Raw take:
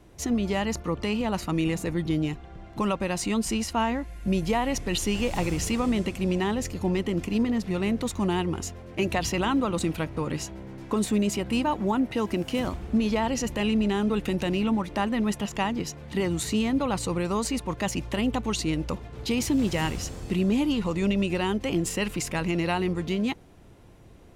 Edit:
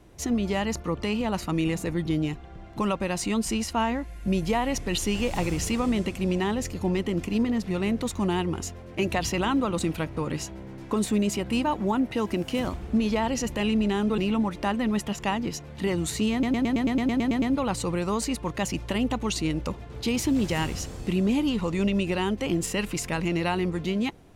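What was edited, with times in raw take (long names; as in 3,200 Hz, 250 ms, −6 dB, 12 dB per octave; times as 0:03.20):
0:14.18–0:14.51: remove
0:16.65: stutter 0.11 s, 11 plays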